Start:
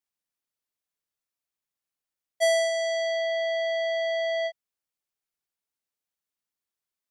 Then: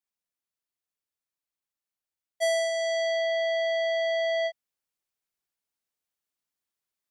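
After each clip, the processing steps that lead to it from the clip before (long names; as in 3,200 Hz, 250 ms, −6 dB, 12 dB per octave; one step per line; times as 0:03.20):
speech leveller 0.5 s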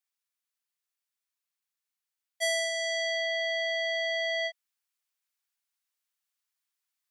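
high-pass filter 1,100 Hz 12 dB per octave
level +2.5 dB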